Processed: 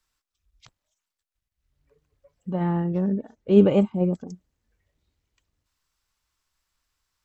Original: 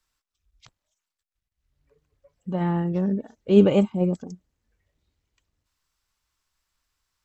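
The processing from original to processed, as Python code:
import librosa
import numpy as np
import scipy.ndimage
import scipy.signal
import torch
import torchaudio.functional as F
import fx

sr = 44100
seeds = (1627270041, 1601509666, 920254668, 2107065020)

y = fx.high_shelf(x, sr, hz=2900.0, db=-8.0, at=(2.5, 4.28))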